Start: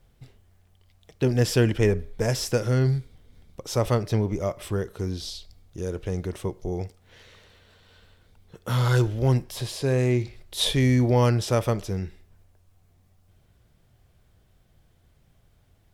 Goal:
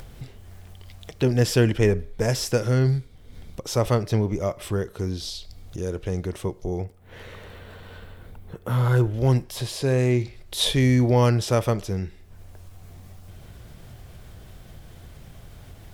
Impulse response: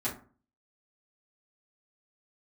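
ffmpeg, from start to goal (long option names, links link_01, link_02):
-filter_complex "[0:a]asettb=1/sr,asplit=3[link_01][link_02][link_03];[link_01]atrim=end=6.814[link_04];[link_02]atrim=start=6.81:end=9.14,asetpts=PTS-STARTPTS,afade=type=in:duration=0.004:curve=qsin,afade=type=out:start_time=2.326:duration=0.004:curve=qsin,equalizer=frequency=5200:width=0.63:gain=-13[link_05];[link_03]atrim=start=9.136[link_06];[link_04][link_05]acrossfade=duration=0.004:curve1=hsin:curve2=qsin[link_07];[link_07][link_06]acrossfade=duration=0.004:curve1=qsin:curve2=hsin,acompressor=mode=upward:threshold=-30dB:ratio=2.5,volume=1.5dB"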